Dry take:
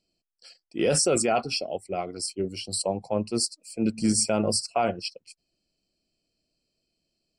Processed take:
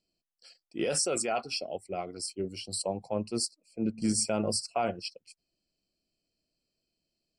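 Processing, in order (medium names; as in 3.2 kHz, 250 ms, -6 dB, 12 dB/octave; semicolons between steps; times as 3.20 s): 0.84–1.62 s: bass shelf 320 Hz -9 dB; 3.51–4.02 s: low-pass 1.2 kHz 6 dB/octave; trim -5 dB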